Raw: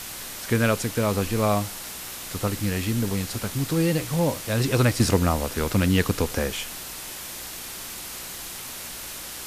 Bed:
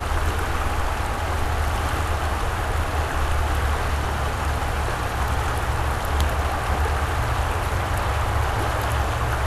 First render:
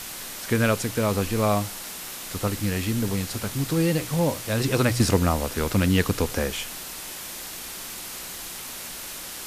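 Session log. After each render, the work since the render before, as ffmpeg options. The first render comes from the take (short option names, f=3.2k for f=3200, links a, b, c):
-af "bandreject=f=60:t=h:w=4,bandreject=f=120:t=h:w=4"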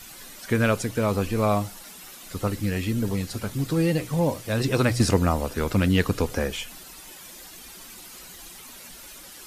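-af "afftdn=nr=11:nf=-37"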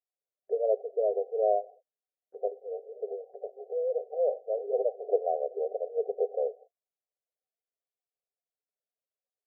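-af "afftfilt=real='re*between(b*sr/4096,390,780)':imag='im*between(b*sr/4096,390,780)':win_size=4096:overlap=0.75,agate=range=-46dB:threshold=-49dB:ratio=16:detection=peak"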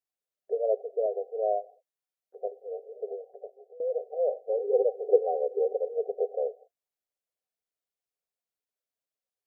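-filter_complex "[0:a]asettb=1/sr,asplit=3[a][b][c];[a]atrim=end=1.064[d];[b]atrim=start=1.06:end=2.6,asetpts=PTS-STARTPTS,afade=t=in:d=0.004:c=qsin,afade=t=out:st=1.536:d=0.004:c=qsin,highpass=f=450:p=1[e];[c]atrim=start=2.596[f];[d][e]acrossfade=d=0.004:c1=hsin:c2=qsin[g];[g][f]acrossfade=d=0.004:c1=qsin:c2=hsin,asettb=1/sr,asplit=3[h][i][j];[h]atrim=end=4.494[k];[i]atrim=start=4.49:end=5.94,asetpts=PTS-STARTPTS,afade=t=in:d=0.004:c=qsin,afade=t=out:st=1.446:d=0.004:c=qsin,aecho=1:1:2.3:0.96,atrim=end_sample=63945[l];[j]atrim=start=5.936[m];[k][l]acrossfade=d=0.004:c1=hsin:c2=qsin[n];[n][m]acrossfade=d=0.004:c1=qsin:c2=hsin,asplit=2[o][p];[o]atrim=end=3.8,asetpts=PTS-STARTPTS,afade=t=out:st=3.22:d=0.58:silence=0.0794328[q];[p]atrim=start=3.8,asetpts=PTS-STARTPTS,afade=t=in:d=0.004:c=hsin:silence=0.0794328[r];[q][r]concat=n=2:v=0:a=1"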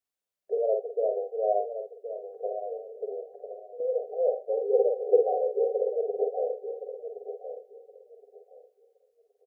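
-filter_complex "[0:a]asplit=2[a][b];[b]adelay=49,volume=-4.5dB[c];[a][c]amix=inputs=2:normalize=0,aecho=1:1:1069|2138|3207:0.316|0.0664|0.0139"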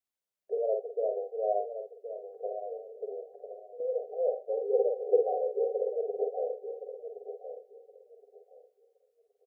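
-af "volume=-3.5dB"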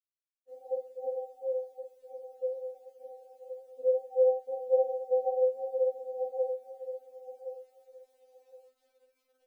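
-af "acrusher=bits=11:mix=0:aa=0.000001,afftfilt=real='re*3.46*eq(mod(b,12),0)':imag='im*3.46*eq(mod(b,12),0)':win_size=2048:overlap=0.75"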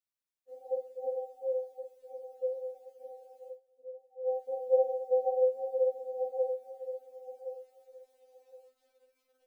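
-filter_complex "[0:a]asplit=3[a][b][c];[a]atrim=end=3.6,asetpts=PTS-STARTPTS,afade=t=out:st=3.47:d=0.13:silence=0.11885[d];[b]atrim=start=3.6:end=4.23,asetpts=PTS-STARTPTS,volume=-18.5dB[e];[c]atrim=start=4.23,asetpts=PTS-STARTPTS,afade=t=in:d=0.13:silence=0.11885[f];[d][e][f]concat=n=3:v=0:a=1"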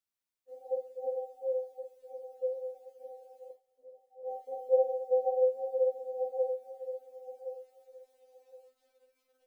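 -filter_complex "[0:a]asettb=1/sr,asplit=3[a][b][c];[a]atrim=end=3.504[d];[b]atrim=start=3.5:end=4.69,asetpts=PTS-STARTPTS,afade=t=in:d=0.004:c=qsin,afade=t=out:st=1.186:d=0.004:c=qsin,aecho=1:1:6.8:0.65,atrim=end_sample=52479[e];[c]atrim=start=4.686[f];[d][e]acrossfade=d=0.004:c1=hsin:c2=qsin[g];[g][f]acrossfade=d=0.004:c1=qsin:c2=hsin"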